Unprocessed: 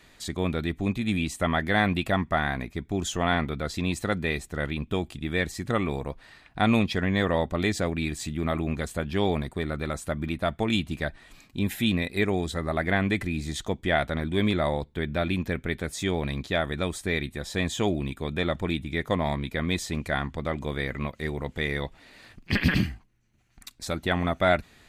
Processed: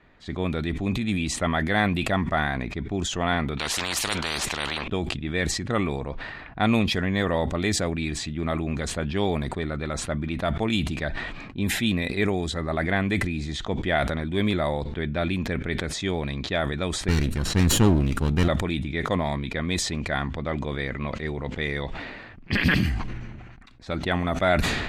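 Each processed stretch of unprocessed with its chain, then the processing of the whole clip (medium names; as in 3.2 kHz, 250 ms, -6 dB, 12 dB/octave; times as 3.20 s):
3.57–4.88 s: tone controls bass 0 dB, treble -8 dB + spectrum-flattening compressor 10:1
17.08–18.48 s: comb filter that takes the minimum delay 0.71 ms + bass shelf 450 Hz +8.5 dB
whole clip: level-controlled noise filter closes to 1.8 kHz, open at -20.5 dBFS; decay stretcher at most 34 dB/s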